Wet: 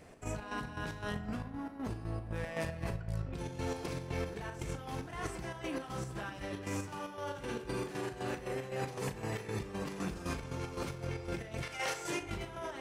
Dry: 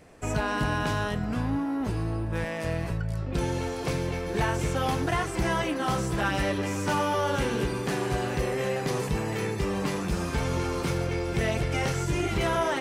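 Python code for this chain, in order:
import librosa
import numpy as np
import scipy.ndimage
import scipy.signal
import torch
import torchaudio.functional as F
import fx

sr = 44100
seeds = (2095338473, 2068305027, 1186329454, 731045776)

y = fx.highpass(x, sr, hz=fx.line((11.61, 1100.0), (12.2, 310.0)), slope=12, at=(11.61, 12.2), fade=0.02)
y = fx.over_compress(y, sr, threshold_db=-32.0, ratio=-1.0)
y = fx.chopper(y, sr, hz=3.9, depth_pct=60, duty_pct=55)
y = fx.doubler(y, sr, ms=38.0, db=-11.0)
y = fx.echo_filtered(y, sr, ms=62, feedback_pct=81, hz=4000.0, wet_db=-16.5)
y = y * 10.0 ** (-6.0 / 20.0)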